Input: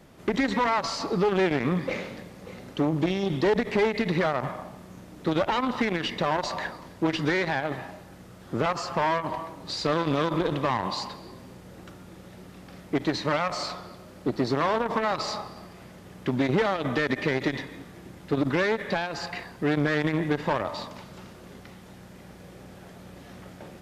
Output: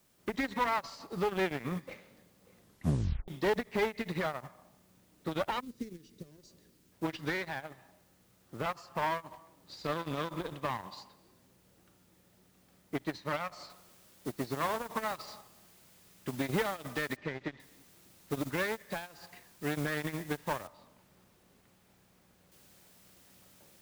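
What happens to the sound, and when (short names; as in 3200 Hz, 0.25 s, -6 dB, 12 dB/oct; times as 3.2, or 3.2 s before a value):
2.56 tape stop 0.72 s
5.6–6.92 EQ curve 420 Hz 0 dB, 820 Hz -30 dB, 3200 Hz -15 dB, 6100 Hz +2 dB
13.7 noise floor step -50 dB -41 dB
17.16–17.6 air absorption 180 m
20.67–22.52 high shelf 2600 Hz -10.5 dB
whole clip: dynamic EQ 350 Hz, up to -4 dB, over -36 dBFS, Q 0.7; upward expander 2.5:1, over -35 dBFS; gain -2 dB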